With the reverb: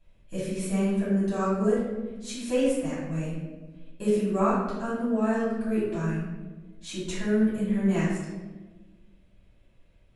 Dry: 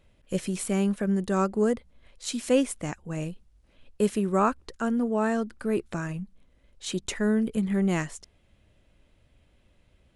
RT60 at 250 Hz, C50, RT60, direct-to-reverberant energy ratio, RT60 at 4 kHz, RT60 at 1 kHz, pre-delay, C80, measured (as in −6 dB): 1.8 s, −0.5 dB, 1.3 s, −10.5 dB, 0.75 s, 1.1 s, 3 ms, 3.0 dB